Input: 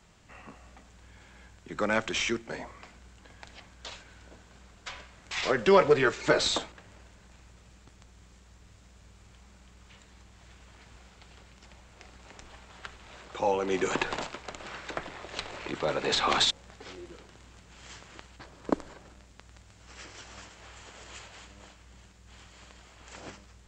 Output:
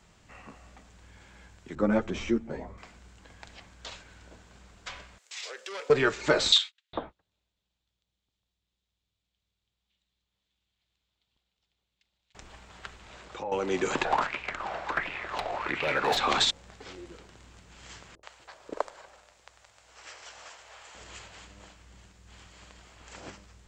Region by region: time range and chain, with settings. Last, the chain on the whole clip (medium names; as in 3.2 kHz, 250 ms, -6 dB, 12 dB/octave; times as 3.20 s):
1.75–2.78 s: tilt shelf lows +9.5 dB, about 940 Hz + three-phase chorus
5.18–5.90 s: resonant high-pass 440 Hz, resonance Q 3.4 + differentiator + transformer saturation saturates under 2.4 kHz
6.52–12.35 s: gate -47 dBFS, range -31 dB + peaking EQ 3.6 kHz +14.5 dB 0.89 oct + bands offset in time highs, lows 410 ms, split 1.5 kHz
13.01–13.52 s: low-pass that closes with the level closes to 1.9 kHz, closed at -27 dBFS + compression 2:1, threshold -38 dBFS
14.05–16.17 s: treble shelf 6 kHz -10 dB + hard clipper -26.5 dBFS + sweeping bell 1.4 Hz 660–2600 Hz +18 dB
18.15–20.95 s: resonant low shelf 360 Hz -14 dB, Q 1.5 + bands offset in time lows, highs 80 ms, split 410 Hz
whole clip: none